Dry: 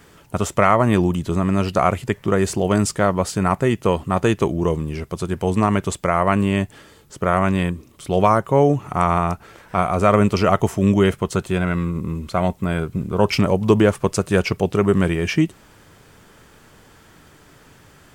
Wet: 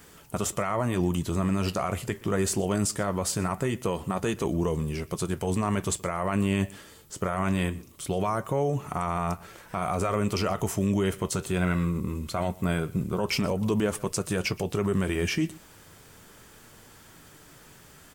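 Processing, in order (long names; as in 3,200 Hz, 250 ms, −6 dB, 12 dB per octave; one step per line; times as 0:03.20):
high-shelf EQ 5,600 Hz +10 dB
brickwall limiter −13 dBFS, peak gain reduction 12 dB
flanger 0.22 Hz, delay 3.8 ms, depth 8 ms, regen −69%
on a send: single-tap delay 122 ms −22 dB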